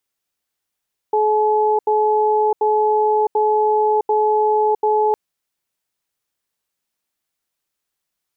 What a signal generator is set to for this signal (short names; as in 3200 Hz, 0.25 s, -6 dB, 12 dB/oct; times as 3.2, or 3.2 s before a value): cadence 427 Hz, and 855 Hz, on 0.66 s, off 0.08 s, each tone -16 dBFS 4.01 s